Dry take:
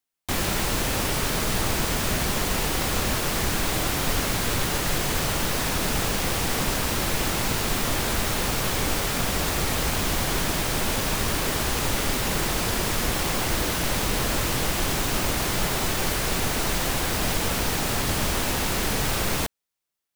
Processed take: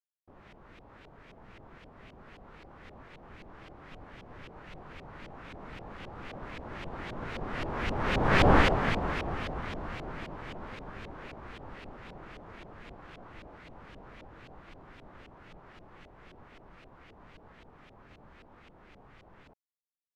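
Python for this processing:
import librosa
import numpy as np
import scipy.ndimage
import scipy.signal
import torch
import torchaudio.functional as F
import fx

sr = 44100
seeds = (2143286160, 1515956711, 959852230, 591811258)

y = fx.doppler_pass(x, sr, speed_mps=13, closest_m=2.0, pass_at_s=8.49)
y = fx.filter_lfo_lowpass(y, sr, shape='saw_up', hz=3.8, low_hz=420.0, high_hz=2100.0, q=1.6)
y = fx.formant_shift(y, sr, semitones=6)
y = F.gain(torch.from_numpy(y), 6.0).numpy()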